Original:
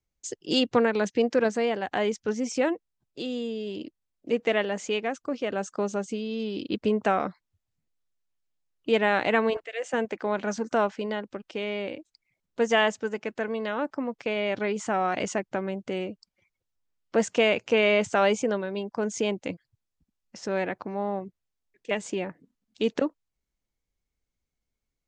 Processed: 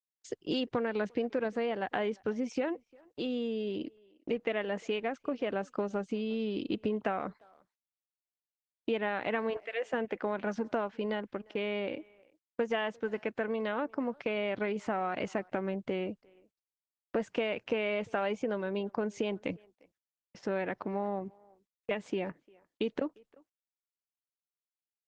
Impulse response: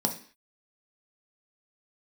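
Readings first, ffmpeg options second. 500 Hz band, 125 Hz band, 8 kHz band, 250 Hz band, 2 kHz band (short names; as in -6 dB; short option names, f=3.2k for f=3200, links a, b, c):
-6.5 dB, -5.0 dB, under -15 dB, -5.5 dB, -8.0 dB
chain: -filter_complex "[0:a]agate=range=-44dB:threshold=-45dB:ratio=16:detection=peak,lowpass=3.5k,acompressor=threshold=-29dB:ratio=5,asplit=2[a][b];[b]adelay=350,highpass=300,lowpass=3.4k,asoftclip=type=hard:threshold=-25.5dB,volume=-25dB[c];[a][c]amix=inputs=2:normalize=0" -ar 48000 -c:a libopus -b:a 20k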